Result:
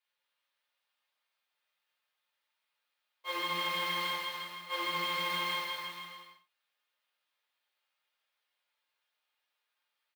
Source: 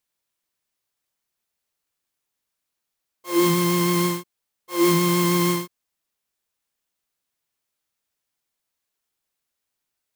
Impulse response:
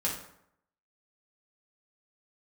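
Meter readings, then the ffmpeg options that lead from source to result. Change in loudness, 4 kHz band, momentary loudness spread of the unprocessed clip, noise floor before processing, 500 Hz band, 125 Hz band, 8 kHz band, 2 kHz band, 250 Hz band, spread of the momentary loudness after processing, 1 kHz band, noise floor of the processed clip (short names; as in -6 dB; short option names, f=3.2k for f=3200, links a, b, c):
-13.0 dB, -3.5 dB, 11 LU, -82 dBFS, -19.0 dB, -28.0 dB, -20.5 dB, -4.0 dB, -28.0 dB, 13 LU, -8.5 dB, -85 dBFS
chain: -filter_complex "[0:a]highpass=700,highshelf=f=4.9k:t=q:w=1.5:g=-11.5,acompressor=threshold=-33dB:ratio=6,aecho=1:1:210|378|512.4|619.9|705.9:0.631|0.398|0.251|0.158|0.1[a];[1:a]atrim=start_sample=2205,afade=t=out:st=0.16:d=0.01,atrim=end_sample=7497[b];[a][b]afir=irnorm=-1:irlink=0,volume=-5dB"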